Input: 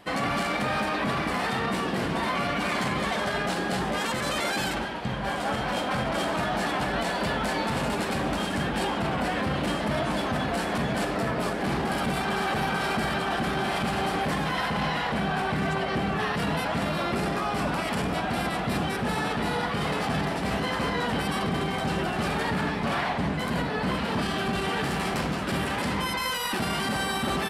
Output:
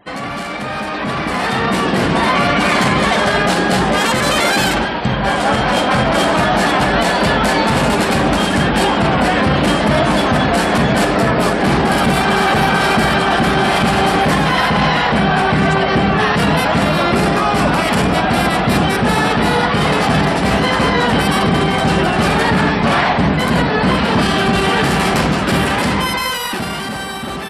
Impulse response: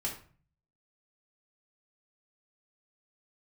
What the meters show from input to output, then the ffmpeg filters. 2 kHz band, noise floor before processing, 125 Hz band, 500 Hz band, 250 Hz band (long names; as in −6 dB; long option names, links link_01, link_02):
+13.0 dB, −30 dBFS, +13.5 dB, +13.0 dB, +13.0 dB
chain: -af "afftfilt=real='re*gte(hypot(re,im),0.00251)':imag='im*gte(hypot(re,im),0.00251)':win_size=1024:overlap=0.75,dynaudnorm=framelen=170:gausssize=17:maxgain=11dB,volume=3dB"